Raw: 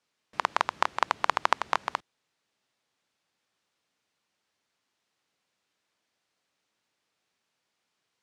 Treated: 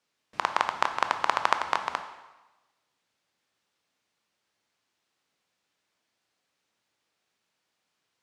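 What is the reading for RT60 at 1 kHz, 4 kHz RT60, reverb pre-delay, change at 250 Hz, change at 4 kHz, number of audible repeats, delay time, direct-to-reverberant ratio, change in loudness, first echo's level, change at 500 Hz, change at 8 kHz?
1.1 s, 1.0 s, 7 ms, +1.0 dB, +0.5 dB, no echo, no echo, 7.5 dB, +0.5 dB, no echo, +0.5 dB, +0.5 dB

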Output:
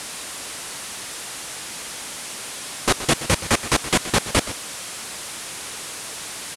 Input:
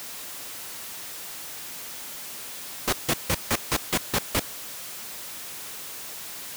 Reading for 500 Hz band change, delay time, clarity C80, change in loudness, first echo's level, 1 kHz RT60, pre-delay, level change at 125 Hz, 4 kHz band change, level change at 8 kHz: +7.5 dB, 124 ms, no reverb, +5.5 dB, -14.0 dB, no reverb, no reverb, +7.5 dB, +7.0 dB, +6.5 dB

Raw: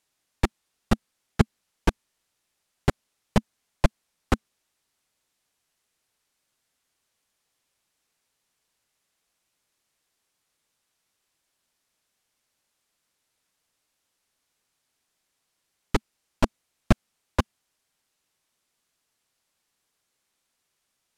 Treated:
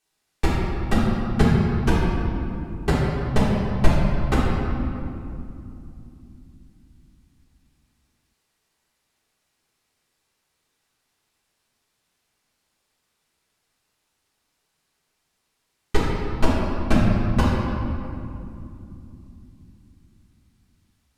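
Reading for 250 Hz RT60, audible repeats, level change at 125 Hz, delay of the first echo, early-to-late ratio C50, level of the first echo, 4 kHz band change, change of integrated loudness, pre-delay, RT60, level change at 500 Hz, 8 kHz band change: 4.5 s, no echo, +8.5 dB, no echo, -2.0 dB, no echo, +4.0 dB, +5.5 dB, 3 ms, 2.7 s, +6.5 dB, +2.0 dB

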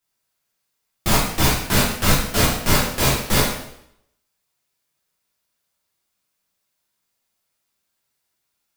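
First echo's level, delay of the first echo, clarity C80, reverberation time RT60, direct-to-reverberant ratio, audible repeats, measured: no echo, no echo, 5.0 dB, 0.75 s, -7.5 dB, no echo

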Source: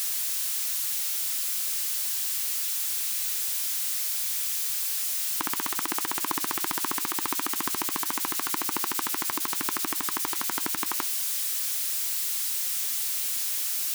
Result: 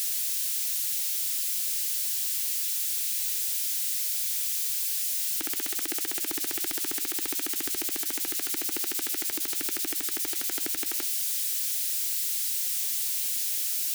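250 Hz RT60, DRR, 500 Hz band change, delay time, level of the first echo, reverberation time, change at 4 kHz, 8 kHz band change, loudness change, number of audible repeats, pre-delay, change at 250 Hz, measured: no reverb, no reverb, -1.0 dB, no echo, no echo, no reverb, -1.0 dB, 0.0 dB, -0.5 dB, no echo, no reverb, -3.0 dB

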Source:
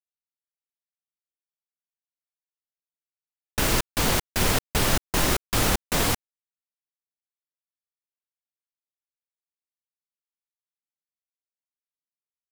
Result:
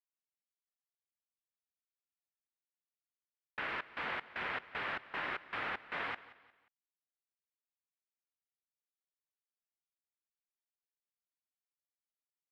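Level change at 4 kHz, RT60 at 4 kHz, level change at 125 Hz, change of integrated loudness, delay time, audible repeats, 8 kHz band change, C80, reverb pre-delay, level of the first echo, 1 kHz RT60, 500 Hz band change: -20.0 dB, no reverb, -30.5 dB, -15.5 dB, 178 ms, 3, under -40 dB, no reverb, no reverb, -18.0 dB, no reverb, -18.0 dB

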